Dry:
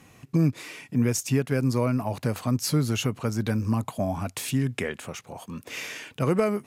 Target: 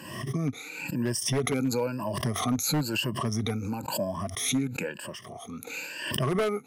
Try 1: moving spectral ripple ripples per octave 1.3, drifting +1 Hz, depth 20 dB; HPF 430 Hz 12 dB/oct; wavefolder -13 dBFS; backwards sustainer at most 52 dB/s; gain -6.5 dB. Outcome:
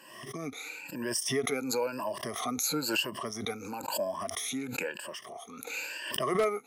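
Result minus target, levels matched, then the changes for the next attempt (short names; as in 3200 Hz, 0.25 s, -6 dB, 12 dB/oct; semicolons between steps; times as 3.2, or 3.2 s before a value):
125 Hz band -11.0 dB
change: HPF 120 Hz 12 dB/oct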